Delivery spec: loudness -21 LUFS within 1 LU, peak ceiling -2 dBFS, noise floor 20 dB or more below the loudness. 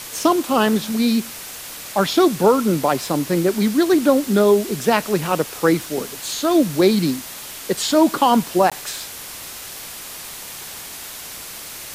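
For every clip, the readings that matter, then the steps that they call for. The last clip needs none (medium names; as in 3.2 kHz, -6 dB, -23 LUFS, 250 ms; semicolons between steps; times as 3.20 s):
dropouts 1; longest dropout 16 ms; noise floor -35 dBFS; noise floor target -39 dBFS; loudness -18.5 LUFS; peak level -2.5 dBFS; loudness target -21.0 LUFS
-> interpolate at 8.70 s, 16 ms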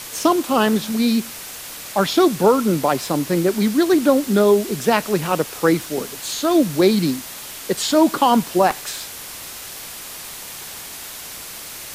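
dropouts 0; noise floor -35 dBFS; noise floor target -39 dBFS
-> noise print and reduce 6 dB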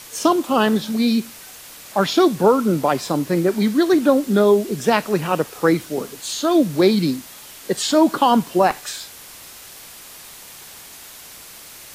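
noise floor -41 dBFS; loudness -18.5 LUFS; peak level -3.0 dBFS; loudness target -21.0 LUFS
-> trim -2.5 dB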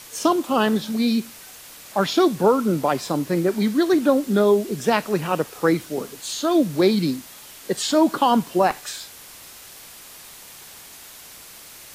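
loudness -21.0 LUFS; peak level -5.5 dBFS; noise floor -43 dBFS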